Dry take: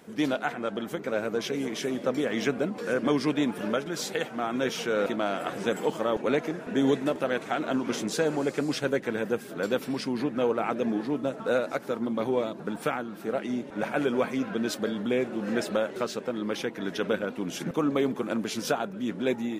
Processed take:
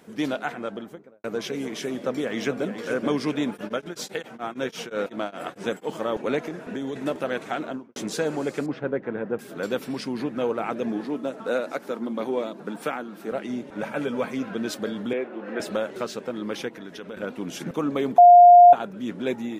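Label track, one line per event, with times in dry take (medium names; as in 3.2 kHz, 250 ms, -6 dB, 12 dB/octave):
0.560000	1.240000	studio fade out
1.970000	2.800000	echo throw 430 ms, feedback 45%, level -9.5 dB
3.540000	5.950000	tremolo of two beating tones nulls at 8.8 Hz -> 3.5 Hz
6.480000	6.960000	compression, threshold -27 dBFS
7.550000	7.960000	studio fade out
8.660000	9.390000	low-pass 1.5 kHz
11.040000	13.320000	high-pass 170 Hz 24 dB/octave
13.820000	14.230000	comb of notches 360 Hz
15.130000	15.600000	three-band isolator lows -21 dB, under 260 Hz, highs -22 dB, over 3.1 kHz
16.680000	17.170000	compression 2.5:1, threshold -38 dBFS
18.180000	18.730000	bleep 706 Hz -6.5 dBFS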